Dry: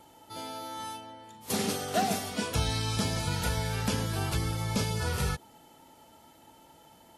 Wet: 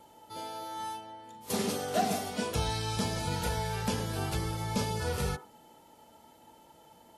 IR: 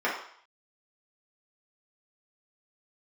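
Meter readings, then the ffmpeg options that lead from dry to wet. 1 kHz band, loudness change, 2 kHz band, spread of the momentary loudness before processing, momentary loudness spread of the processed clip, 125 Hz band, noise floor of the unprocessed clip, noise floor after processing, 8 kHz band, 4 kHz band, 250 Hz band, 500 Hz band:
0.0 dB, −2.0 dB, −3.0 dB, 11 LU, 11 LU, −3.5 dB, −57 dBFS, −59 dBFS, −3.0 dB, −3.0 dB, −1.5 dB, +0.5 dB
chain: -filter_complex "[0:a]asplit=2[link_01][link_02];[link_02]lowpass=1000[link_03];[1:a]atrim=start_sample=2205,afade=type=out:start_time=0.18:duration=0.01,atrim=end_sample=8379[link_04];[link_03][link_04]afir=irnorm=-1:irlink=0,volume=-14dB[link_05];[link_01][link_05]amix=inputs=2:normalize=0,volume=-3dB"

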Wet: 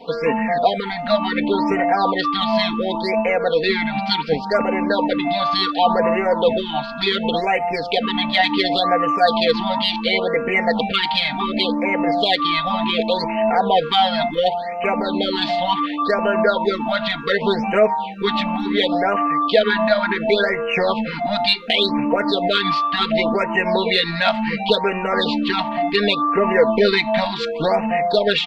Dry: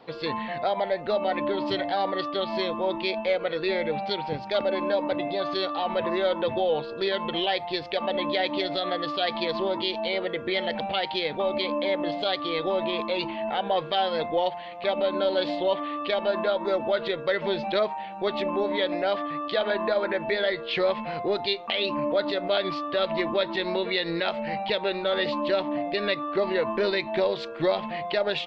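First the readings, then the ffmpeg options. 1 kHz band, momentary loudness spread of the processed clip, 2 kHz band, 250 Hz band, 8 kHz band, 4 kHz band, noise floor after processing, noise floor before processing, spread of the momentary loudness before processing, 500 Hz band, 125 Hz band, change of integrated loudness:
+10.0 dB, 4 LU, +10.0 dB, +10.0 dB, can't be measured, +9.0 dB, −27 dBFS, −37 dBFS, 3 LU, +6.0 dB, +10.5 dB, +8.0 dB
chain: -af "acontrast=64,aecho=1:1:4.3:1,afftfilt=real='re*(1-between(b*sr/1024,370*pow(4300/370,0.5+0.5*sin(2*PI*0.69*pts/sr))/1.41,370*pow(4300/370,0.5+0.5*sin(2*PI*0.69*pts/sr))*1.41))':imag='im*(1-between(b*sr/1024,370*pow(4300/370,0.5+0.5*sin(2*PI*0.69*pts/sr))/1.41,370*pow(4300/370,0.5+0.5*sin(2*PI*0.69*pts/sr))*1.41))':win_size=1024:overlap=0.75,volume=1.5dB"

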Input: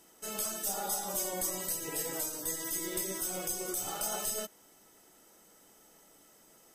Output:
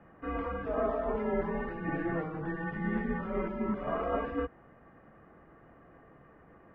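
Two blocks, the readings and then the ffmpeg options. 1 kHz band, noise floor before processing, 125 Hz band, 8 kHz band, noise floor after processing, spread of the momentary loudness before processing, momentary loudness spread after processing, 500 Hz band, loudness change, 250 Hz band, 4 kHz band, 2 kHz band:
+5.0 dB, −61 dBFS, +12.0 dB, below −40 dB, −58 dBFS, 3 LU, 5 LU, +8.0 dB, −0.5 dB, +10.5 dB, below −15 dB, +5.5 dB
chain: -af "highpass=frequency=160:width_type=q:width=0.5412,highpass=frequency=160:width_type=q:width=1.307,lowpass=frequency=2100:width_type=q:width=0.5176,lowpass=frequency=2100:width_type=q:width=0.7071,lowpass=frequency=2100:width_type=q:width=1.932,afreqshift=-150,volume=8.5dB"

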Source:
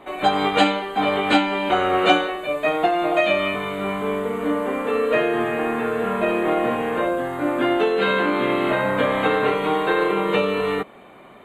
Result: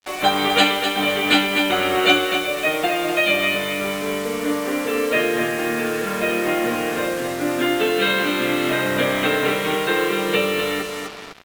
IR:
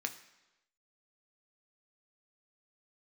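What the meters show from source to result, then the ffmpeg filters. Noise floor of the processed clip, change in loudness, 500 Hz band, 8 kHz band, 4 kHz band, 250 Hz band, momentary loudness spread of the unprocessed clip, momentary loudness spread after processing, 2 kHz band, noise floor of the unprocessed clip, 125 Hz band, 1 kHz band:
−29 dBFS, +1.0 dB, −1.0 dB, can't be measured, +7.0 dB, +0.5 dB, 6 LU, 7 LU, +4.0 dB, −45 dBFS, 0.0 dB, −2.0 dB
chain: -af "aecho=1:1:252|504|756|1008:0.447|0.143|0.0457|0.0146,adynamicequalizer=threshold=0.0178:dfrequency=950:dqfactor=1.3:tfrequency=950:tqfactor=1.3:attack=5:release=100:ratio=0.375:range=4:mode=cutabove:tftype=bell,acrusher=bits=5:mix=0:aa=0.5,tiltshelf=frequency=1400:gain=-4,volume=3.5dB"

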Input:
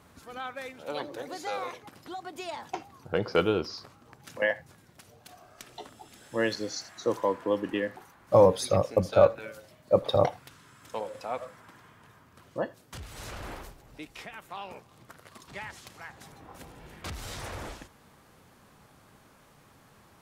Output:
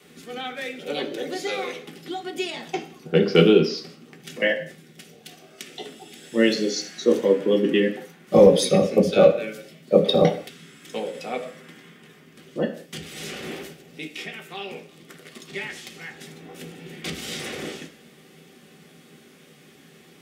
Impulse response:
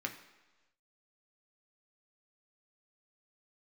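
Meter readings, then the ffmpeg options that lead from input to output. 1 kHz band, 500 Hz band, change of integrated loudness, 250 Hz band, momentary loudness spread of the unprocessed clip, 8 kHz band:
+1.0 dB, +7.0 dB, +7.0 dB, +12.0 dB, 22 LU, +7.5 dB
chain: -filter_complex "[0:a]highpass=130,bandreject=frequency=1700:width=28[link_01];[1:a]atrim=start_sample=2205,afade=type=out:start_time=0.35:duration=0.01,atrim=end_sample=15876,asetrate=61740,aresample=44100[link_02];[link_01][link_02]afir=irnorm=-1:irlink=0,adynamicequalizer=threshold=0.00355:dfrequency=190:dqfactor=2:tfrequency=190:tqfactor=2:attack=5:release=100:ratio=0.375:range=3:mode=boostabove:tftype=bell,apsyclip=14dB,equalizer=frequency=1000:width_type=o:width=0.85:gain=-14,volume=-1.5dB"

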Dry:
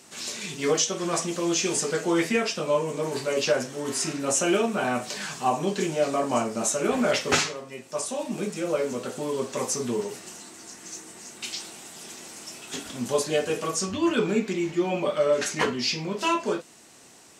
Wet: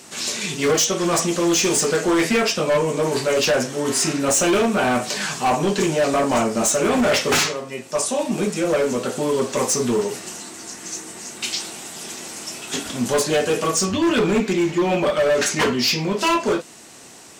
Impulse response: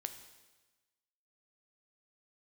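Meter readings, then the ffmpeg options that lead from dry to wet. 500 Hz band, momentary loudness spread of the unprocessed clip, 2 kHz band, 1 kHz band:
+6.0 dB, 15 LU, +7.0 dB, +6.0 dB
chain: -af "asoftclip=type=hard:threshold=-23dB,volume=8.5dB"

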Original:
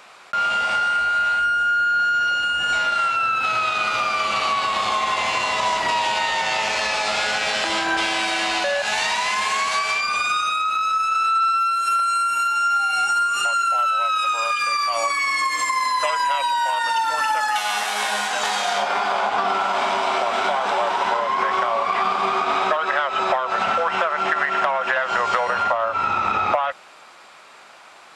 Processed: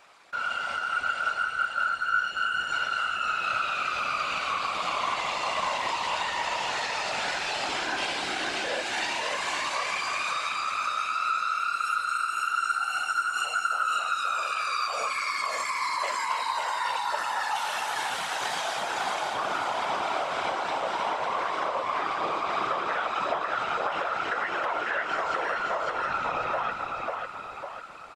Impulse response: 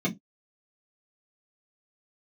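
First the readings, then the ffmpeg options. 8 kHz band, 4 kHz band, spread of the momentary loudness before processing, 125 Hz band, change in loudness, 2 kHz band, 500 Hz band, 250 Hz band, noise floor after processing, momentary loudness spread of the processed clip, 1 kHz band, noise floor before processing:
−8.0 dB, −7.5 dB, 2 LU, can't be measured, −8.0 dB, −7.0 dB, −7.5 dB, −7.0 dB, −36 dBFS, 2 LU, −8.0 dB, −46 dBFS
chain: -af "aecho=1:1:547|1094|1641|2188|2735|3282:0.708|0.34|0.163|0.0783|0.0376|0.018,afftfilt=real='hypot(re,im)*cos(2*PI*random(0))':imag='hypot(re,im)*sin(2*PI*random(1))':win_size=512:overlap=0.75,volume=-4dB"

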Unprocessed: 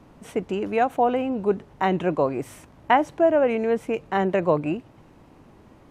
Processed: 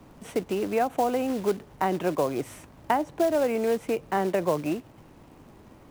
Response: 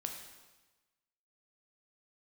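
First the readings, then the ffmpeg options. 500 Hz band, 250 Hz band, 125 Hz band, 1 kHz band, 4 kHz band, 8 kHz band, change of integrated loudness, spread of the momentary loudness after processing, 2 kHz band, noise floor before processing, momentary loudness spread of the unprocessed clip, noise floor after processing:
−3.5 dB, −3.5 dB, −5.0 dB, −4.5 dB, −2.0 dB, can't be measured, −3.5 dB, 8 LU, −5.5 dB, −52 dBFS, 11 LU, −52 dBFS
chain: -filter_complex "[0:a]acrusher=bits=4:mode=log:mix=0:aa=0.000001,acrossover=split=270|1500[link_01][link_02][link_03];[link_01]acompressor=threshold=-35dB:ratio=4[link_04];[link_02]acompressor=threshold=-22dB:ratio=4[link_05];[link_03]acompressor=threshold=-39dB:ratio=4[link_06];[link_04][link_05][link_06]amix=inputs=3:normalize=0"

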